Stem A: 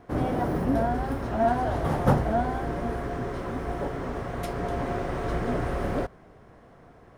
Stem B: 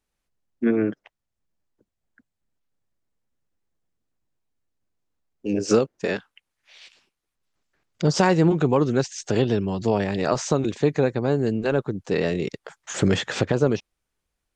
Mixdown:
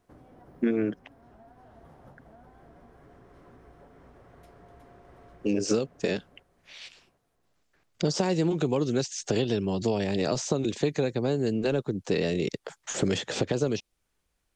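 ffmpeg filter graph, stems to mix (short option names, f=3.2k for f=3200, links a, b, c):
-filter_complex "[0:a]acompressor=threshold=-31dB:ratio=10,volume=-19dB,asplit=2[a][b];[b]volume=-6.5dB[c];[1:a]acrossover=split=230|750|2600[d][e][f][g];[d]acompressor=threshold=-36dB:ratio=4[h];[e]acompressor=threshold=-29dB:ratio=4[i];[f]acompressor=threshold=-50dB:ratio=4[j];[g]acompressor=threshold=-36dB:ratio=4[k];[h][i][j][k]amix=inputs=4:normalize=0,volume=3dB,asplit=2[l][m];[m]apad=whole_len=316527[n];[a][n]sidechaincompress=threshold=-28dB:ratio=8:attack=16:release=1320[o];[c]aecho=0:1:365|730|1095|1460|1825:1|0.34|0.116|0.0393|0.0134[p];[o][l][p]amix=inputs=3:normalize=0"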